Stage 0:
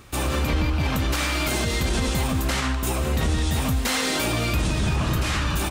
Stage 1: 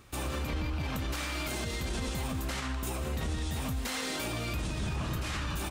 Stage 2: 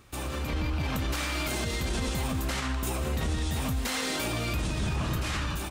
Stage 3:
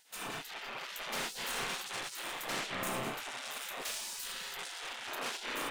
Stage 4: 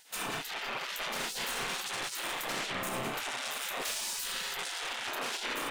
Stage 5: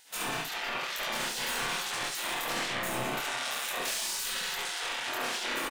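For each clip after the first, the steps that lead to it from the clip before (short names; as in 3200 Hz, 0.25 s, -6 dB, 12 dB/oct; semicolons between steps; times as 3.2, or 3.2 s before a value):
limiter -17 dBFS, peak gain reduction 3.5 dB; gain -8.5 dB
AGC gain up to 4 dB
soft clip -31.5 dBFS, distortion -11 dB; spring tank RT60 2.2 s, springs 32 ms, chirp 70 ms, DRR -2.5 dB; spectral gate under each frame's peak -20 dB weak
limiter -32.5 dBFS, peak gain reduction 8 dB; gain +6.5 dB
early reflections 24 ms -3.5 dB, 70 ms -4.5 dB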